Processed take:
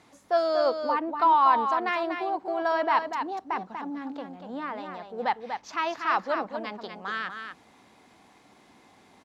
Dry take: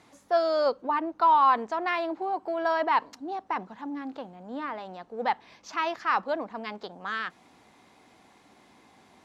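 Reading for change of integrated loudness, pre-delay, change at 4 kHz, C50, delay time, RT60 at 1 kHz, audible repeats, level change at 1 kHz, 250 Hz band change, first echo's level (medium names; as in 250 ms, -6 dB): +0.5 dB, no reverb, +1.0 dB, no reverb, 241 ms, no reverb, 1, +1.0 dB, +1.0 dB, -7.0 dB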